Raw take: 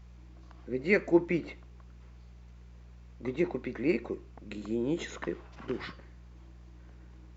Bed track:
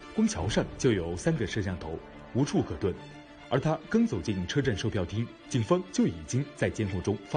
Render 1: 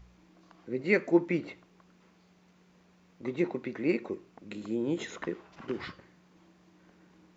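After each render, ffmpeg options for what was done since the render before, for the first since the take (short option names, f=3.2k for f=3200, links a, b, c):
-af "bandreject=f=60:t=h:w=4,bandreject=f=120:t=h:w=4"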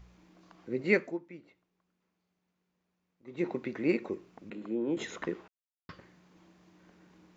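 -filter_complex "[0:a]asettb=1/sr,asplit=3[a][b][c];[a]atrim=end=4.504[d];[b]atrim=start=4.5:end=4.97,asetpts=PTS-STARTPTS,afade=t=in:d=0.004:c=qsin,afade=t=out:st=0.466:d=0.004:c=qsin,acrossover=split=180 2500:gain=0.158 1 0.141[e][f][g];[e][f][g]amix=inputs=3:normalize=0[h];[c]atrim=start=4.966[i];[d][h]acrossfade=d=0.004:c1=hsin:c2=qsin[j];[j][i]acrossfade=d=0.004:c1=qsin:c2=hsin,asplit=5[k][l][m][n][o];[k]atrim=end=1.18,asetpts=PTS-STARTPTS,afade=t=out:st=0.93:d=0.25:silence=0.11885[p];[l]atrim=start=1.18:end=3.26,asetpts=PTS-STARTPTS,volume=-18.5dB[q];[m]atrim=start=3.26:end=5.48,asetpts=PTS-STARTPTS,afade=t=in:d=0.25:silence=0.11885,afade=t=out:st=2.216:d=0.004:c=hsin[r];[n]atrim=start=5.48:end=5.89,asetpts=PTS-STARTPTS,volume=0[s];[o]atrim=start=5.89,asetpts=PTS-STARTPTS,afade=t=in:d=0.004:c=hsin[t];[p][q][r][s][t]concat=n=5:v=0:a=1"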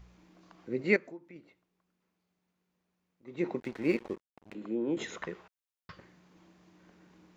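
-filter_complex "[0:a]asettb=1/sr,asplit=3[a][b][c];[a]atrim=end=0.964[d];[b]atrim=start=0.96:end=1.36,asetpts=PTS-STARTPTS,afade=t=in:d=0.004:c=qsin,afade=t=out:st=0.396:d=0.004:c=qsin,acompressor=threshold=-48dB:ratio=2:attack=3.2:release=140:knee=1:detection=peak[e];[c]atrim=start=1.356[f];[d][e]acrossfade=d=0.004:c1=hsin:c2=qsin[g];[g][f]acrossfade=d=0.004:c1=qsin:c2=hsin,asettb=1/sr,asplit=3[h][i][j];[h]atrim=end=3.604[k];[i]atrim=start=3.6:end=4.55,asetpts=PTS-STARTPTS,afade=t=in:d=0.004:c=qsin,afade=t=out:st=0.946:d=0.004:c=qsin,aeval=exprs='sgn(val(0))*max(abs(val(0))-0.00473,0)':c=same[l];[j]atrim=start=4.546[m];[k][l]acrossfade=d=0.004:c1=hsin:c2=qsin[n];[n][m]acrossfade=d=0.004:c1=qsin:c2=hsin,asettb=1/sr,asplit=3[o][p][q];[o]atrim=end=5.184[r];[p]atrim=start=5.18:end=5.97,asetpts=PTS-STARTPTS,afade=t=in:d=0.004:c=qsin,afade=t=out:st=0.786:d=0.004:c=qsin,equalizer=f=290:t=o:w=0.77:g=-12.5[s];[q]atrim=start=5.966[t];[r][s]acrossfade=d=0.004:c1=hsin:c2=qsin[u];[u][t]acrossfade=d=0.004:c1=qsin:c2=hsin"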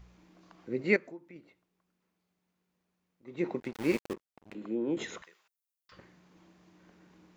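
-filter_complex "[0:a]asettb=1/sr,asplit=3[a][b][c];[a]atrim=end=3.734[d];[b]atrim=start=3.73:end=4.14,asetpts=PTS-STARTPTS,afade=t=in:d=0.004:c=qsin,afade=t=out:st=0.406:d=0.004:c=qsin,aeval=exprs='val(0)*gte(abs(val(0)),0.015)':c=same[e];[c]atrim=start=4.136[f];[d][e]acrossfade=d=0.004:c1=hsin:c2=qsin[g];[g][f]acrossfade=d=0.004:c1=qsin:c2=hsin,asettb=1/sr,asplit=3[h][i][j];[h]atrim=end=5.224[k];[i]atrim=start=5.22:end=5.92,asetpts=PTS-STARTPTS,afade=t=in:d=0.004:c=qsin,afade=t=out:st=0.696:d=0.004:c=qsin,aderivative[l];[j]atrim=start=5.916[m];[k][l]acrossfade=d=0.004:c1=hsin:c2=qsin[n];[n][m]acrossfade=d=0.004:c1=qsin:c2=hsin"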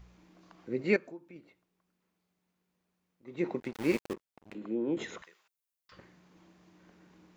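-filter_complex "[0:a]asettb=1/sr,asplit=3[a][b][c];[a]atrim=end=0.904[d];[b]atrim=start=0.9:end=1.37,asetpts=PTS-STARTPTS,afade=t=in:d=0.004:c=qsin,afade=t=out:st=0.466:d=0.004:c=qsin,asuperstop=centerf=2000:order=4:qfactor=7.8[e];[c]atrim=start=1.366[f];[d][e]acrossfade=d=0.004:c1=hsin:c2=qsin[g];[g][f]acrossfade=d=0.004:c1=qsin:c2=hsin,asettb=1/sr,asplit=3[h][i][j];[h]atrim=end=4.584[k];[i]atrim=start=4.58:end=5.19,asetpts=PTS-STARTPTS,afade=t=in:d=0.004:c=qsin,afade=t=out:st=0.606:d=0.004:c=qsin,highshelf=f=3.7k:g=-5[l];[j]atrim=start=5.186[m];[k][l]acrossfade=d=0.004:c1=hsin:c2=qsin[n];[n][m]acrossfade=d=0.004:c1=qsin:c2=hsin"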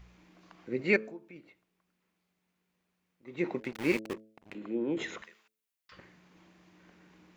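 -af "equalizer=f=2.3k:t=o:w=1.3:g=5,bandreject=f=108.9:t=h:w=4,bandreject=f=217.8:t=h:w=4,bandreject=f=326.7:t=h:w=4,bandreject=f=435.6:t=h:w=4,bandreject=f=544.5:t=h:w=4,bandreject=f=653.4:t=h:w=4"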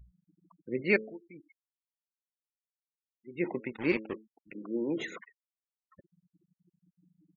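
-af "afftfilt=real='re*gte(hypot(re,im),0.00891)':imag='im*gte(hypot(re,im),0.00891)':win_size=1024:overlap=0.75"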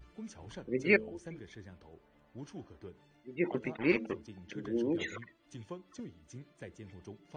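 -filter_complex "[1:a]volume=-19.5dB[a];[0:a][a]amix=inputs=2:normalize=0"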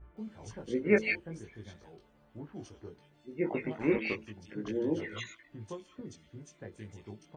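-filter_complex "[0:a]asplit=2[a][b];[b]adelay=19,volume=-2.5dB[c];[a][c]amix=inputs=2:normalize=0,acrossover=split=2000[d][e];[e]adelay=170[f];[d][f]amix=inputs=2:normalize=0"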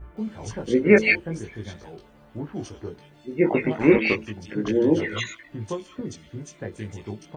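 -af "volume=12dB,alimiter=limit=-3dB:level=0:latency=1"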